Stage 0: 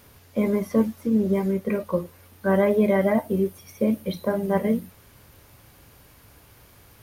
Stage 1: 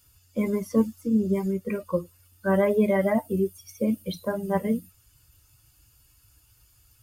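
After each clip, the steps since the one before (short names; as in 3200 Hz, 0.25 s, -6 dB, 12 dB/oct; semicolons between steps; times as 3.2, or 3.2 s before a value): per-bin expansion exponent 1.5; bell 7400 Hz +6 dB 0.99 oct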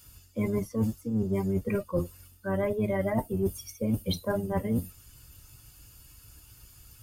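octaver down 1 oct, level -5 dB; reverse; compressor 12:1, threshold -31 dBFS, peak gain reduction 16.5 dB; reverse; gain +6.5 dB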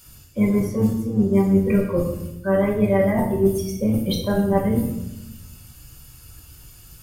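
shoebox room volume 310 m³, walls mixed, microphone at 1.1 m; gain +5 dB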